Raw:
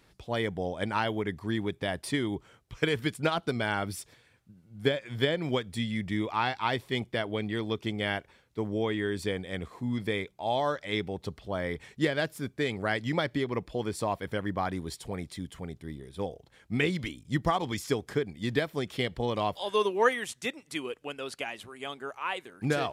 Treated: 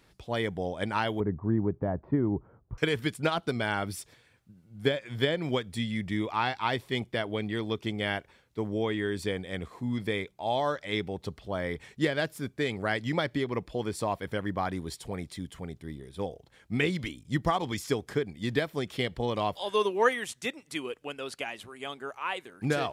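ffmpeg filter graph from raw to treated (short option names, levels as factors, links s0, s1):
-filter_complex "[0:a]asettb=1/sr,asplit=3[s0][s1][s2];[s0]atrim=end=1.204[s3];[s1]atrim=start=1.2:end=2.78,asetpts=PTS-STARTPTS,afade=t=in:d=0.004:c=qsin,afade=t=out:st=1.576:d=0.004:c=qsin,lowpass=f=1200:w=0.5412,lowpass=f=1200:w=1.3066,lowshelf=f=290:g=7[s4];[s2]atrim=start=2.776[s5];[s3][s4]acrossfade=d=0.004:c1=hsin:c2=qsin[s6];[s6][s5]acrossfade=d=0.004:c1=qsin:c2=hsin"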